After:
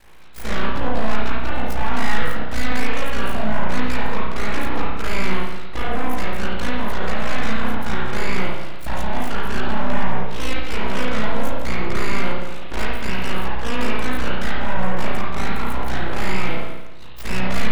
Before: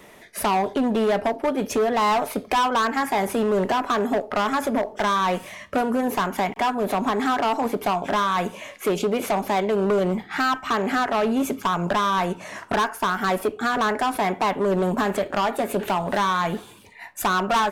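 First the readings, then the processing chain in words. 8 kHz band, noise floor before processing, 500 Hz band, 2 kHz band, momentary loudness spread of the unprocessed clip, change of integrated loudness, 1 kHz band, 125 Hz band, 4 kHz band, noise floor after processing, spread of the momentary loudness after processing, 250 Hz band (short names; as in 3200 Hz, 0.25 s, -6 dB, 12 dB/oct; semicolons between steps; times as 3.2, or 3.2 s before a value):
-3.5 dB, -46 dBFS, -5.5 dB, +1.5 dB, 5 LU, -2.5 dB, -5.5 dB, +5.5 dB, 0.0 dB, -23 dBFS, 4 LU, -2.0 dB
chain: ring modulator 28 Hz; full-wave rectifier; spring tank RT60 1.1 s, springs 32/56 ms, chirp 40 ms, DRR -6 dB; gain -1.5 dB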